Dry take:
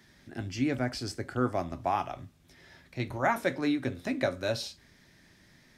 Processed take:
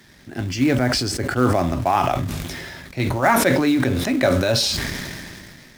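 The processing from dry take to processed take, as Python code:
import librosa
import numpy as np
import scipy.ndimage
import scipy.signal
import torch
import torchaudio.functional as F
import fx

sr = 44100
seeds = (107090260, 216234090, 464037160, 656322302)

p1 = fx.quant_companded(x, sr, bits=4)
p2 = x + F.gain(torch.from_numpy(p1), -9.0).numpy()
p3 = fx.sustainer(p2, sr, db_per_s=25.0)
y = F.gain(torch.from_numpy(p3), 6.5).numpy()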